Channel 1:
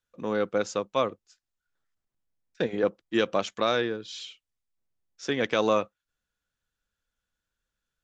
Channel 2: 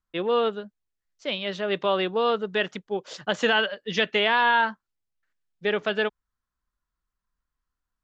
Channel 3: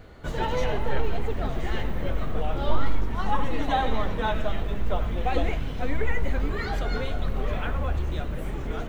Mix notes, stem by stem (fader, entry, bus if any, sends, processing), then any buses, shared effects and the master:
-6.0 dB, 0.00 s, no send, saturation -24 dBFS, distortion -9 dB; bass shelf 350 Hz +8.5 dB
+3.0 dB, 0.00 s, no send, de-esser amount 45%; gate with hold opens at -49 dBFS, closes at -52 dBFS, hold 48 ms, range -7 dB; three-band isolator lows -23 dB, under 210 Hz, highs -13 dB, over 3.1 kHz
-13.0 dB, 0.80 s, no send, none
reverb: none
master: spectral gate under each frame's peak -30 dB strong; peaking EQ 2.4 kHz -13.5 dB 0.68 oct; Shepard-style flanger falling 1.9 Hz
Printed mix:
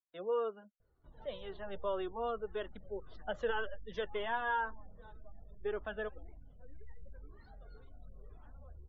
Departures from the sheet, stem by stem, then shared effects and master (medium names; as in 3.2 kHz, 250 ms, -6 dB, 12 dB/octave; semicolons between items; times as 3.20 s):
stem 1: muted; stem 2 +3.0 dB -> -7.0 dB; stem 3 -13.0 dB -> -24.5 dB